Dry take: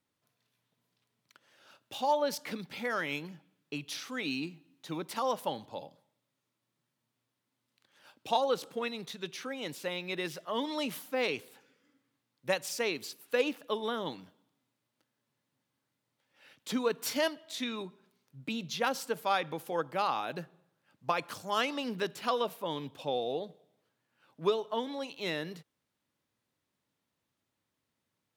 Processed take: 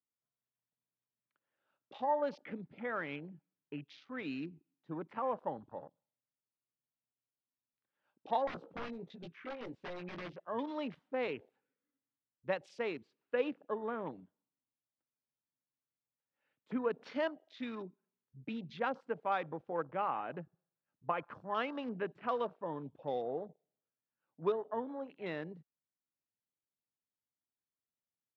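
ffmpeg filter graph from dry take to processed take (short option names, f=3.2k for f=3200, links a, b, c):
-filter_complex "[0:a]asettb=1/sr,asplit=3[a][b][c];[a]atrim=end=8.474[d];[b]atrim=start=8.47:end=10.33,asetpts=PTS-STARTPTS,afade=t=in:d=0.004:c=qsin,afade=t=out:st=1.856:d=0.004:c=qsin,aeval=exprs='(mod(35.5*val(0)+1,2)-1)/35.5':c=same,asplit=2[e][f];[f]adelay=17,volume=-5dB[g];[e][g]amix=inputs=2:normalize=0,atrim=end_sample=82026[h];[c]atrim=start=10.326[i];[d][h]acrossfade=d=0.004:c1=hsin:c2=qsin[j];[j][i]acrossfade=d=0.004:c1=qsin:c2=hsin,afwtdn=0.00708,lowpass=2k,volume=-4dB"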